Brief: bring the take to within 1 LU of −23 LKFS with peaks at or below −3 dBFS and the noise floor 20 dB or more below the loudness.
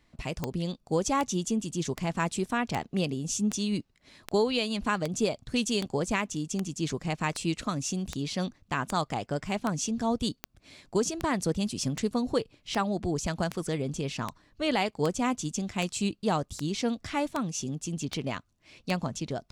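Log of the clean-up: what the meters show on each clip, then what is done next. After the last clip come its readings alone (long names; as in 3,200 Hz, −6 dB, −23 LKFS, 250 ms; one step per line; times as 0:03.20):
number of clicks 25; integrated loudness −30.5 LKFS; sample peak −13.5 dBFS; target loudness −23.0 LKFS
→ click removal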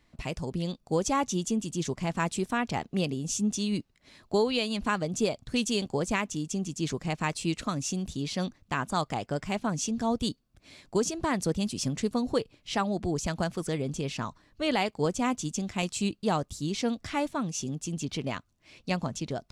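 number of clicks 0; integrated loudness −30.5 LKFS; sample peak −15.0 dBFS; target loudness −23.0 LKFS
→ level +7.5 dB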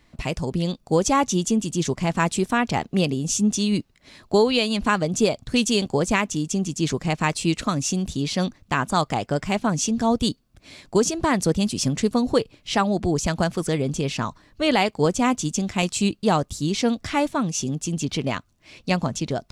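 integrated loudness −23.0 LKFS; sample peak −7.5 dBFS; background noise floor −60 dBFS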